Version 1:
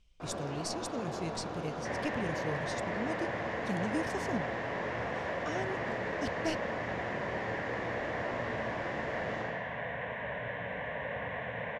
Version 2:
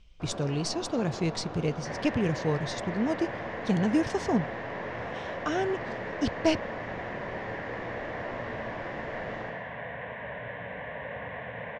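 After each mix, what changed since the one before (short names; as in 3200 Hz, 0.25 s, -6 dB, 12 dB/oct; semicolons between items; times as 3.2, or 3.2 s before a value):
speech +10.0 dB; master: add air absorption 80 m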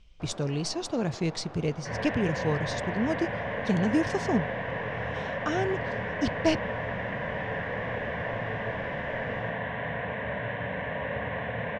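first sound: send -9.0 dB; second sound: send +10.0 dB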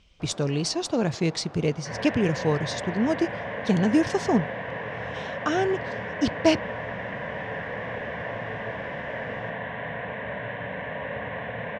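speech +5.0 dB; master: add HPF 110 Hz 6 dB/oct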